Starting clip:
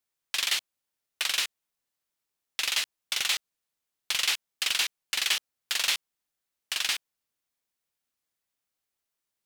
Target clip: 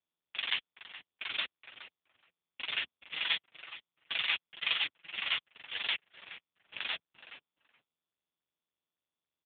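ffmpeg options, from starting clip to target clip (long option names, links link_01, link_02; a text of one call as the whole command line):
ffmpeg -i in.wav -filter_complex "[0:a]highpass=360,afwtdn=0.0126,agate=range=-33dB:threshold=-26dB:ratio=3:detection=peak,asettb=1/sr,asplit=3[link_01][link_02][link_03];[link_01]atrim=end=2.804[link_04];[link_02]atrim=start=2.8:end=4.84,asetpts=PTS-STARTPTS,afade=type=in:duration=0.004:curve=qsin,afade=type=out:start_time=2.036:duration=0.004:curve=qsin,aecho=1:1:6:0.75,atrim=end_sample=89964[link_05];[link_03]atrim=start=4.836[link_06];[link_04][link_05]acrossfade=duration=0.004:curve1=hsin:curve2=qsin[link_07];[link_07][link_06]acrossfade=duration=0.004:curve1=qsin:curve2=hsin,acrusher=bits=6:dc=4:mix=0:aa=0.000001,asplit=2[link_08][link_09];[link_09]adelay=422,lowpass=frequency=2100:poles=1,volume=-11dB,asplit=2[link_10][link_11];[link_11]adelay=422,lowpass=frequency=2100:poles=1,volume=0.16[link_12];[link_08][link_10][link_12]amix=inputs=3:normalize=0,volume=1.5dB" -ar 8000 -c:a libopencore_amrnb -b:a 5150 out.amr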